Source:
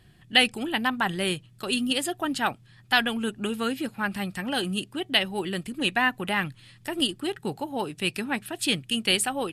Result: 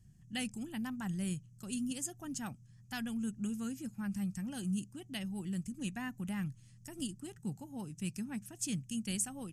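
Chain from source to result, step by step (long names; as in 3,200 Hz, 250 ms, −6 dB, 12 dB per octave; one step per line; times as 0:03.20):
drawn EQ curve 200 Hz 0 dB, 400 Hz −18 dB, 2,500 Hz −18 dB, 4,000 Hz −21 dB, 6,200 Hz +5 dB, 10,000 Hz −7 dB
level −3.5 dB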